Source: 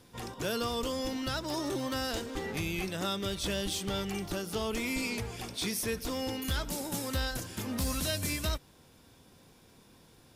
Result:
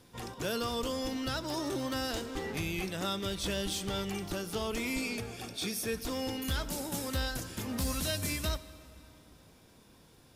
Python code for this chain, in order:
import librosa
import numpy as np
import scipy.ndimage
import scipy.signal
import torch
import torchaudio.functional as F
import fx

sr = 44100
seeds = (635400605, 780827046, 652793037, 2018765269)

y = fx.notch_comb(x, sr, f0_hz=1000.0, at=(4.99, 5.94))
y = fx.rev_plate(y, sr, seeds[0], rt60_s=3.3, hf_ratio=0.7, predelay_ms=0, drr_db=15.0)
y = y * 10.0 ** (-1.0 / 20.0)